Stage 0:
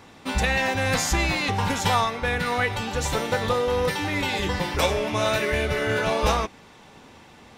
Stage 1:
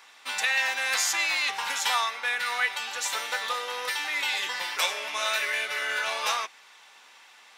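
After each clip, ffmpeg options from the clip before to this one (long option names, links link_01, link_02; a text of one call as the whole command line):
ffmpeg -i in.wav -af "highpass=1300,volume=1dB" out.wav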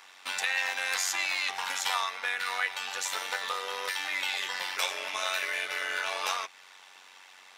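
ffmpeg -i in.wav -filter_complex "[0:a]asplit=2[link_01][link_02];[link_02]acompressor=threshold=-34dB:ratio=6,volume=1.5dB[link_03];[link_01][link_03]amix=inputs=2:normalize=0,tremolo=f=93:d=0.71,volume=-3.5dB" out.wav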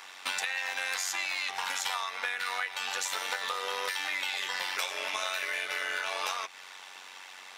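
ffmpeg -i in.wav -af "acompressor=threshold=-35dB:ratio=6,volume=5.5dB" out.wav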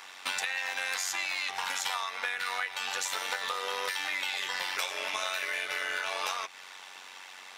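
ffmpeg -i in.wav -af "lowshelf=frequency=120:gain=5.5" out.wav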